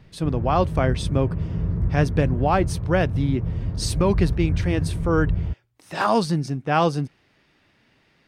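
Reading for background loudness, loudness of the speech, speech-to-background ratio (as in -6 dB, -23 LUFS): -26.5 LUFS, -23.5 LUFS, 3.0 dB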